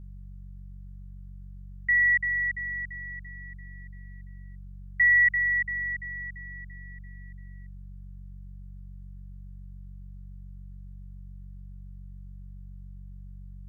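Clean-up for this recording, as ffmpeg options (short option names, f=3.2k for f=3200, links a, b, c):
-af "bandreject=f=47.1:t=h:w=4,bandreject=f=94.2:t=h:w=4,bandreject=f=141.3:t=h:w=4,bandreject=f=188.4:t=h:w=4,agate=range=-21dB:threshold=-35dB"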